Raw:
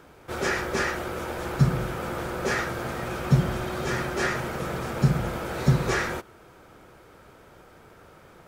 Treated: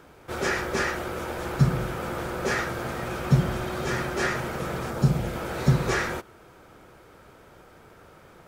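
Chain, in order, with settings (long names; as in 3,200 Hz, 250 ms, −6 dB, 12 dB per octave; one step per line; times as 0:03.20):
0:04.89–0:05.35: parametric band 3,100 Hz → 900 Hz −7.5 dB 0.77 octaves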